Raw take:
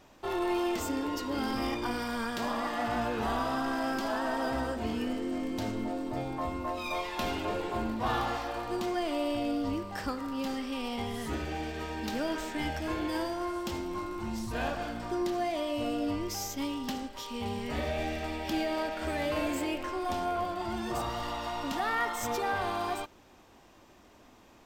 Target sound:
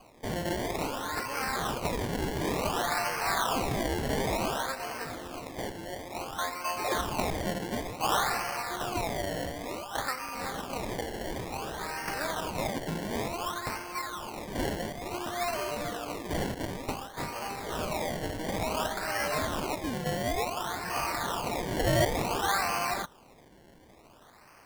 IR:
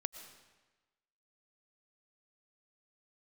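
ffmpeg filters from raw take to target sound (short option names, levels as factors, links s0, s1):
-af "highpass=1000,acrusher=samples=24:mix=1:aa=0.000001:lfo=1:lforange=24:lforate=0.56,volume=2.37"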